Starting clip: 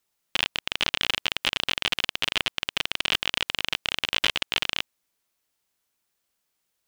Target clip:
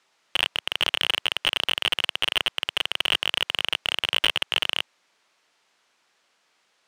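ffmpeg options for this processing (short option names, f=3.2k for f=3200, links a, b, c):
-filter_complex "[0:a]highpass=110,lowpass=7.4k,asplit=2[a][b];[b]highpass=f=720:p=1,volume=25dB,asoftclip=type=tanh:threshold=-4.5dB[c];[a][c]amix=inputs=2:normalize=0,lowpass=f=2.4k:p=1,volume=-6dB"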